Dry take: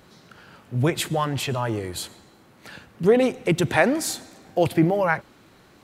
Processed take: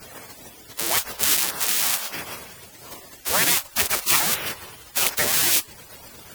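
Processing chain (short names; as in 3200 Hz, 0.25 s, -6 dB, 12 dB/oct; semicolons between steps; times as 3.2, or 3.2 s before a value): switching spikes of -11 dBFS; spectral gate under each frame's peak -20 dB weak; varispeed -8%; gain +7.5 dB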